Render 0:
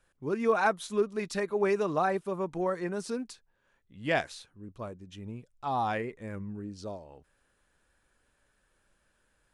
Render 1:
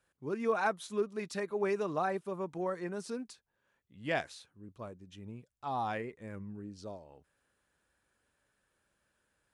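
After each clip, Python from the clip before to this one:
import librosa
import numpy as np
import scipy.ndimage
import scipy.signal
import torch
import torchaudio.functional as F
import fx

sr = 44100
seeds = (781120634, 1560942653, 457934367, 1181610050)

y = scipy.signal.sosfilt(scipy.signal.butter(2, 64.0, 'highpass', fs=sr, output='sos'), x)
y = y * librosa.db_to_amplitude(-5.0)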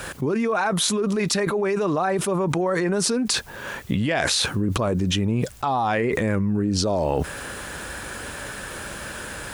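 y = fx.env_flatten(x, sr, amount_pct=100)
y = y * librosa.db_to_amplitude(4.0)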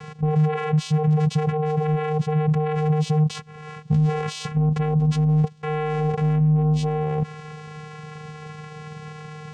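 y = fx.vocoder(x, sr, bands=4, carrier='square', carrier_hz=153.0)
y = y * librosa.db_to_amplitude(2.5)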